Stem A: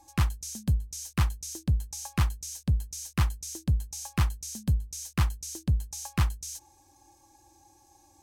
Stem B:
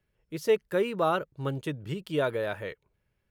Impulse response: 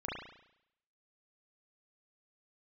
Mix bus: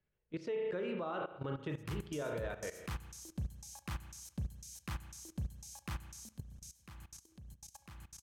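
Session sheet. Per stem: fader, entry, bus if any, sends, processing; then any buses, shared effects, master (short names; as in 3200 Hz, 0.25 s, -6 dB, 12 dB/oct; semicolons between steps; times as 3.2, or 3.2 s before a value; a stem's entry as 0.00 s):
6.13 s -6.5 dB -> 6.68 s -14.5 dB, 1.70 s, send -8.5 dB, echo send -21 dB, low shelf 110 Hz -9 dB
-2.5 dB, 0.00 s, send -4 dB, no echo send, Gaussian blur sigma 1.6 samples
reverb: on, RT60 0.75 s, pre-delay 34 ms
echo: feedback echo 0.137 s, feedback 55%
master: level quantiser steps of 17 dB; limiter -31 dBFS, peak gain reduction 8 dB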